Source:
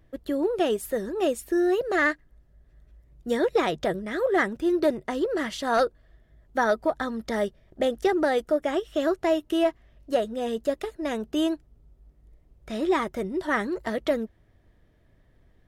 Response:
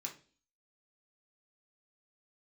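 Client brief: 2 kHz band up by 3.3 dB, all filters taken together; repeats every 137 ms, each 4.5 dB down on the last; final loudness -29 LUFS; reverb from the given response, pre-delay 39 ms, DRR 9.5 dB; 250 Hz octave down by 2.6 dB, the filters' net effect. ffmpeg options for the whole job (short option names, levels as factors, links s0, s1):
-filter_complex "[0:a]equalizer=f=250:t=o:g=-4,equalizer=f=2000:t=o:g=4,aecho=1:1:137|274|411|548|685|822|959|1096|1233:0.596|0.357|0.214|0.129|0.0772|0.0463|0.0278|0.0167|0.01,asplit=2[s0][s1];[1:a]atrim=start_sample=2205,adelay=39[s2];[s1][s2]afir=irnorm=-1:irlink=0,volume=0.422[s3];[s0][s3]amix=inputs=2:normalize=0,volume=0.596"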